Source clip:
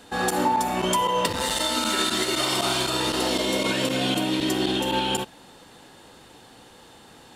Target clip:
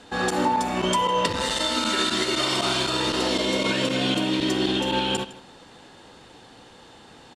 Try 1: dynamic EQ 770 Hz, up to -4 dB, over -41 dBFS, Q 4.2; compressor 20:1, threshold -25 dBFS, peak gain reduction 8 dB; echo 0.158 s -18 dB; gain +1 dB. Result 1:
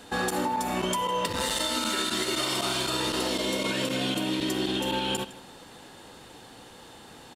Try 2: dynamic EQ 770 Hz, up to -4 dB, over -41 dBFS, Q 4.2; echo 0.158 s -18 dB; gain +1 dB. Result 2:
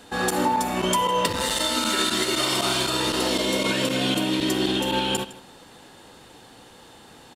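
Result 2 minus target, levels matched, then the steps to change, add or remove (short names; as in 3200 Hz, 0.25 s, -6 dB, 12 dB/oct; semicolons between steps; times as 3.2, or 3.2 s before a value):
8000 Hz band +3.5 dB
add after dynamic EQ: LPF 7000 Hz 12 dB/oct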